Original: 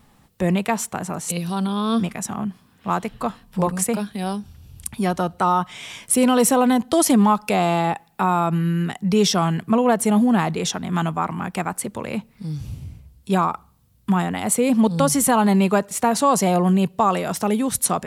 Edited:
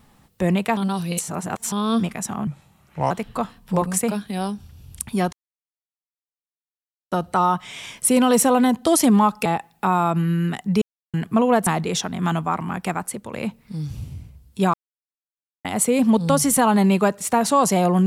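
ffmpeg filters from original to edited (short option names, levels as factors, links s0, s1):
-filter_complex "[0:a]asplit=13[s0][s1][s2][s3][s4][s5][s6][s7][s8][s9][s10][s11][s12];[s0]atrim=end=0.772[s13];[s1]atrim=start=0.768:end=1.722,asetpts=PTS-STARTPTS,areverse[s14];[s2]atrim=start=1.718:end=2.474[s15];[s3]atrim=start=2.47:end=2.96,asetpts=PTS-STARTPTS,asetrate=33957,aresample=44100[s16];[s4]atrim=start=2.956:end=5.18,asetpts=PTS-STARTPTS,afade=t=out:st=2.22:d=0.004:c=hsin,apad=pad_dur=1.79[s17];[s5]atrim=start=5.18:end=7.522,asetpts=PTS-STARTPTS,afade=t=in:d=0.004:c=hsin[s18];[s6]atrim=start=7.818:end=9.18,asetpts=PTS-STARTPTS,afade=t=out:st=1.358:d=0.004:c=hsin[s19];[s7]atrim=start=9.18:end=9.5,asetpts=PTS-STARTPTS,volume=0[s20];[s8]atrim=start=9.5:end=10.032,asetpts=PTS-STARTPTS,afade=t=in:d=0.004:c=hsin[s21];[s9]atrim=start=10.368:end=12.03,asetpts=PTS-STARTPTS,afade=t=out:st=1.252:d=0.41:silence=0.501187[s22];[s10]atrim=start=12.03:end=13.44,asetpts=PTS-STARTPTS,afade=t=in:d=0.004:c=hsin:silence=0.501187,afade=t=out:st=1.406:d=0.004:c=hsin[s23];[s11]atrim=start=13.44:end=14.35,asetpts=PTS-STARTPTS,volume=0[s24];[s12]atrim=start=14.35,asetpts=PTS-STARTPTS,afade=t=in:d=0.004:c=hsin[s25];[s13][s14]acrossfade=d=0.004:c1=hsin:c2=hsin[s26];[s26][s15]acrossfade=d=0.004:c1=hsin:c2=hsin[s27];[s27][s16]acrossfade=d=0.004:c1=hsin:c2=hsin[s28];[s17][s18]concat=n=2:v=0:a=1[s29];[s28][s29]acrossfade=d=0.004:c1=hsin:c2=hsin[s30];[s19][s20][s21]concat=n=3:v=0:a=1[s31];[s30][s31]acrossfade=d=0.004:c1=hsin:c2=hsin[s32];[s22][s23][s24][s25]concat=n=4:v=0:a=1[s33];[s32][s33]acrossfade=d=0.004:c1=hsin:c2=hsin"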